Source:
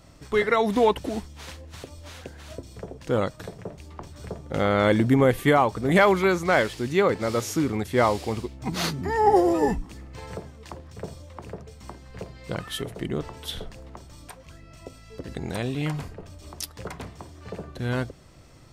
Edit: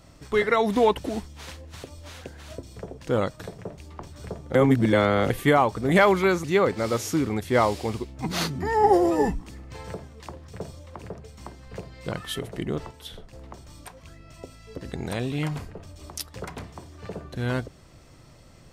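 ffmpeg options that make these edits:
ffmpeg -i in.wav -filter_complex "[0:a]asplit=6[link_01][link_02][link_03][link_04][link_05][link_06];[link_01]atrim=end=4.552[link_07];[link_02]atrim=start=4.548:end=5.302,asetpts=PTS-STARTPTS,areverse[link_08];[link_03]atrim=start=5.298:end=6.442[link_09];[link_04]atrim=start=6.868:end=13.342[link_10];[link_05]atrim=start=13.338:end=13.762,asetpts=PTS-STARTPTS,volume=-7dB[link_11];[link_06]atrim=start=13.758[link_12];[link_07][link_08]acrossfade=duration=0.004:curve1=hsin:curve2=hsin[link_13];[link_13][link_09]acrossfade=duration=0.004:curve1=hsin:curve2=hsin[link_14];[link_14][link_10]acrossfade=duration=0.004:curve1=hsin:curve2=hsin[link_15];[link_15][link_11]acrossfade=duration=0.004:curve1=hsin:curve2=hsin[link_16];[link_16][link_12]acrossfade=duration=0.004:curve1=hsin:curve2=hsin" out.wav

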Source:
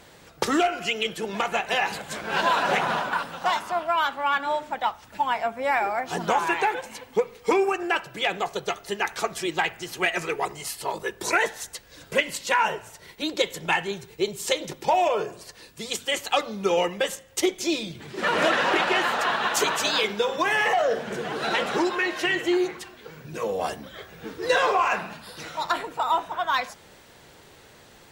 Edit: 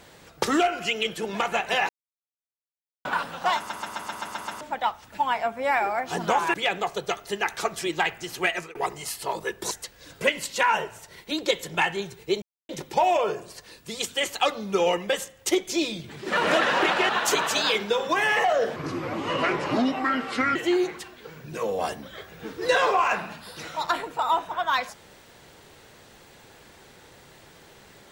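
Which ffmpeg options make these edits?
ffmpeg -i in.wav -filter_complex "[0:a]asplit=19[link_01][link_02][link_03][link_04][link_05][link_06][link_07][link_08][link_09][link_10][link_11][link_12][link_13][link_14][link_15][link_16][link_17][link_18][link_19];[link_01]atrim=end=1.89,asetpts=PTS-STARTPTS,afade=type=out:start_time=1.886:duration=0.004:curve=hsin[link_20];[link_02]atrim=start=1.89:end=3.05,asetpts=PTS-STARTPTS,volume=0[link_21];[link_03]atrim=start=3.05:end=3.702,asetpts=PTS-STARTPTS,afade=type=in:duration=0.004:curve=hsin[link_22];[link_04]atrim=start=3.568:end=3.702[link_23];[link_05]atrim=start=3.568:end=3.702[link_24];[link_06]atrim=start=3.568:end=3.702[link_25];[link_07]atrim=start=3.568:end=3.702[link_26];[link_08]atrim=start=3.568:end=3.702[link_27];[link_09]atrim=start=3.568:end=3.702[link_28];[link_10]atrim=start=3.568:end=3.702[link_29];[link_11]atrim=start=4.608:end=6.542[link_30];[link_12]atrim=start=8.128:end=10.34,asetpts=PTS-STARTPTS,afade=type=out:start_time=1.852:duration=0.36:curve=qsin[link_31];[link_13]atrim=start=10.34:end=11.302,asetpts=PTS-STARTPTS,afade=type=in:duration=0.004:curve=hsin[link_32];[link_14]atrim=start=11.618:end=14.33,asetpts=PTS-STARTPTS,afade=type=out:start_time=2.708:duration=0.004:curve=hsin[link_33];[link_15]atrim=start=14.33:end=14.6,asetpts=PTS-STARTPTS,volume=0[link_34];[link_16]atrim=start=14.6:end=19.002,asetpts=PTS-STARTPTS,afade=type=in:duration=0.004:curve=hsin[link_35];[link_17]atrim=start=19.378:end=21.054[link_36];[link_18]atrim=start=21.05:end=22.36,asetpts=PTS-STARTPTS,asetrate=32193,aresample=44100,atrim=end_sample=79138,asetpts=PTS-STARTPTS[link_37];[link_19]atrim=start=22.356[link_38];[link_20][link_21][link_22]concat=n=3:v=0:a=1[link_39];[link_39][link_23]acrossfade=duration=0.004:curve1=hsin:curve2=hsin[link_40];[link_40][link_24]acrossfade=duration=0.004:curve1=hsin:curve2=hsin[link_41];[link_41][link_25]acrossfade=duration=0.004:curve1=hsin:curve2=hsin[link_42];[link_42][link_26]acrossfade=duration=0.004:curve1=hsin:curve2=hsin[link_43];[link_43][link_27]acrossfade=duration=0.004:curve1=hsin:curve2=hsin[link_44];[link_44][link_28]acrossfade=duration=0.004:curve1=hsin:curve2=hsin[link_45];[link_45][link_29]acrossfade=duration=0.004:curve1=hsin:curve2=hsin[link_46];[link_46][link_30]acrossfade=duration=0.004:curve1=hsin:curve2=hsin[link_47];[link_31][link_32]concat=n=2:v=0:a=1[link_48];[link_47][link_48]acrossfade=duration=0.004:curve1=hsin:curve2=hsin[link_49];[link_33][link_34][link_35]concat=n=3:v=0:a=1[link_50];[link_49][link_50]acrossfade=duration=0.004:curve1=hsin:curve2=hsin[link_51];[link_51][link_36]acrossfade=duration=0.004:curve1=hsin:curve2=hsin[link_52];[link_52][link_37]acrossfade=duration=0.004:curve1=hsin:curve2=hsin[link_53];[link_53][link_38]acrossfade=duration=0.004:curve1=hsin:curve2=hsin" out.wav

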